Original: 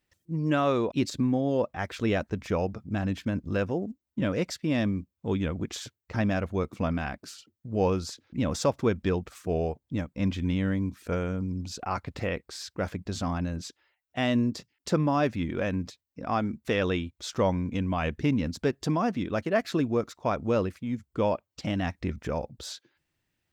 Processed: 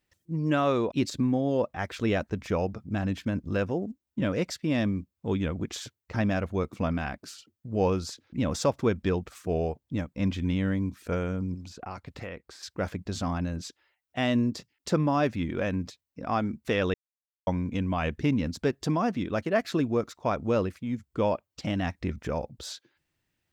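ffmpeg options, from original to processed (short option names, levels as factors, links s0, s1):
-filter_complex "[0:a]asettb=1/sr,asplit=3[s0][s1][s2];[s0]atrim=end=11.544[s3];[s1]atrim=start=11.54:end=12.63,asetpts=PTS-STARTPTS,afade=t=in:d=0.004:c=qsin,afade=t=out:st=1.086:d=0.004:c=qsin,acrossover=split=730|2200[s4][s5][s6];[s4]acompressor=threshold=0.0112:ratio=4[s7];[s5]acompressor=threshold=0.00631:ratio=4[s8];[s6]acompressor=threshold=0.00282:ratio=4[s9];[s7][s8][s9]amix=inputs=3:normalize=0[s10];[s2]atrim=start=12.626[s11];[s3][s10]acrossfade=d=0.004:c1=hsin:c2=qsin[s12];[s12][s11]acrossfade=d=0.004:c1=qsin:c2=hsin,asplit=3[s13][s14][s15];[s13]atrim=end=16.94,asetpts=PTS-STARTPTS,afade=t=out:st=16.936:d=0.004:c=hsin[s16];[s14]atrim=start=16.94:end=17.47,asetpts=PTS-STARTPTS,volume=0[s17];[s15]atrim=start=17.47,asetpts=PTS-STARTPTS,afade=t=in:d=0.004:c=hsin[s18];[s16][s17][s18]concat=n=3:v=0:a=1"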